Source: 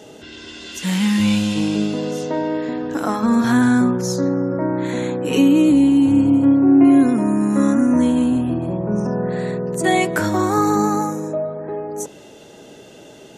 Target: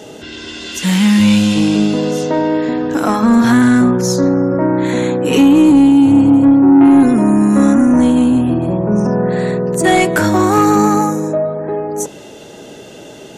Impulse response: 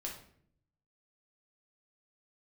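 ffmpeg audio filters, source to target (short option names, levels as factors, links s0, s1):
-filter_complex "[0:a]asoftclip=type=tanh:threshold=0.299,asplit=2[s0][s1];[1:a]atrim=start_sample=2205[s2];[s1][s2]afir=irnorm=-1:irlink=0,volume=0.1[s3];[s0][s3]amix=inputs=2:normalize=0,volume=2.24"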